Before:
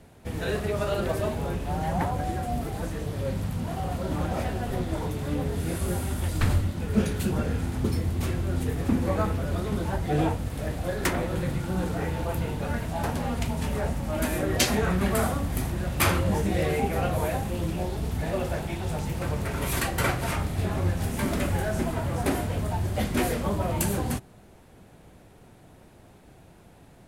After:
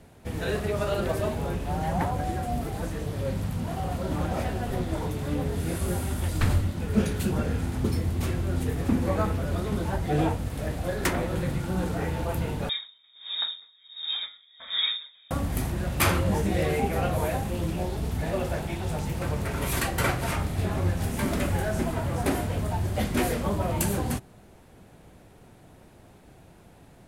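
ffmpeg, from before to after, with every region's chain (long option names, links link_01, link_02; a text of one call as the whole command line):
ffmpeg -i in.wav -filter_complex "[0:a]asettb=1/sr,asplit=3[link_01][link_02][link_03];[link_01]atrim=end=12.694[link_04];[link_02]atrim=start=12.69:end=15.31,asetpts=PTS-STARTPTS,afade=type=in:duration=0.004:curve=qsin,afade=type=out:start_time=2.616:duration=0.004:curve=qsin,asuperstop=centerf=930:order=4:qfactor=1.1,lowpass=frequency=3200:width_type=q:width=0.5098,lowpass=frequency=3200:width_type=q:width=0.6013,lowpass=frequency=3200:width_type=q:width=0.9,lowpass=frequency=3200:width_type=q:width=2.563,afreqshift=-3800,aeval=exprs='val(0)*pow(10,-32*(0.5-0.5*cos(2*PI*1.4*n/s))/20)':channel_layout=same[link_05];[link_03]atrim=start=15.306[link_06];[link_04][link_05]acrossfade=duration=0.004:curve1=hsin:curve2=qsin[link_07];[link_07][link_06]acrossfade=duration=0.004:curve1=qsin:curve2=hsin" out.wav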